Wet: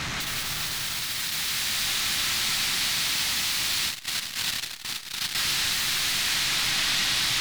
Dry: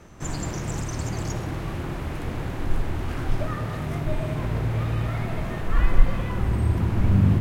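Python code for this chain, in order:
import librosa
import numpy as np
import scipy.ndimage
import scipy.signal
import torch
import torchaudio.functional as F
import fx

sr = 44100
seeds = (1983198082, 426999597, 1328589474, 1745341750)

y = fx.peak_eq(x, sr, hz=1900.0, db=-12.5, octaves=0.42, at=(1.84, 2.85))
y = fx.echo_feedback(y, sr, ms=164, feedback_pct=23, wet_db=-14)
y = fx.rider(y, sr, range_db=4, speed_s=2.0)
y = fx.spec_box(y, sr, start_s=0.44, length_s=0.75, low_hz=370.0, high_hz=5600.0, gain_db=7)
y = fx.fold_sine(y, sr, drive_db=17, ceiling_db=-30.5)
y = fx.graphic_eq(y, sr, hz=(125, 500, 2000, 4000), db=(5, -11, 5, 9))
y = fx.rev_freeverb(y, sr, rt60_s=4.9, hf_ratio=0.9, predelay_ms=80, drr_db=-1.0)
y = fx.transformer_sat(y, sr, knee_hz=820.0, at=(3.86, 5.35))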